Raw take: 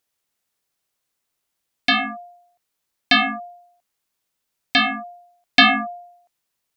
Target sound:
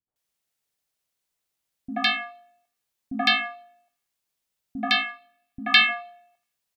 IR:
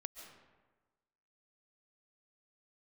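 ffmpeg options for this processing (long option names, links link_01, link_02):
-filter_complex "[0:a]asettb=1/sr,asplit=3[link_01][link_02][link_03];[link_01]atrim=end=4.954[link_04];[link_02]atrim=start=4.95:end=5.81,asetpts=PTS-STARTPTS,afade=type=in:duration=0.004:curve=qsin,afade=type=out:start_time=0.856:duration=0.004:curve=qsin,equalizer=frequency=250:width_type=o:width=0.67:gain=-9,equalizer=frequency=630:width_type=o:width=0.67:gain=-12,equalizer=frequency=2500:width_type=o:width=0.67:gain=3,equalizer=frequency=6300:width_type=o:width=0.67:gain=-4[link_05];[link_03]atrim=start=5.806[link_06];[link_04][link_05]acrossfade=duration=0.004:curve1=hsin:curve2=qsin[link_07];[link_07][link_06]acrossfade=duration=0.004:curve1=qsin:curve2=hsin,acrossover=split=290|1200[link_08][link_09][link_10];[link_09]adelay=80[link_11];[link_10]adelay=160[link_12];[link_08][link_11][link_12]amix=inputs=3:normalize=0,asplit=2[link_13][link_14];[1:a]atrim=start_sample=2205,asetrate=70560,aresample=44100[link_15];[link_14][link_15]afir=irnorm=-1:irlink=0,volume=-14dB[link_16];[link_13][link_16]amix=inputs=2:normalize=0,volume=-4dB"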